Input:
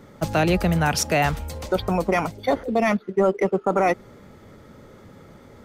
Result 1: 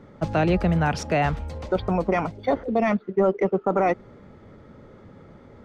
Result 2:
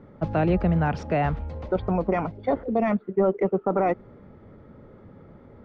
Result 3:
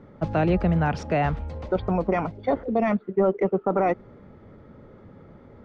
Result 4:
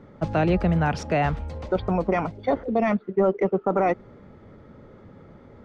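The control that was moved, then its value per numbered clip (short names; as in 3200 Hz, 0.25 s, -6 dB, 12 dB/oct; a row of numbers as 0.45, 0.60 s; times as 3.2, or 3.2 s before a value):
tape spacing loss, at 10 kHz: 20, 46, 37, 28 dB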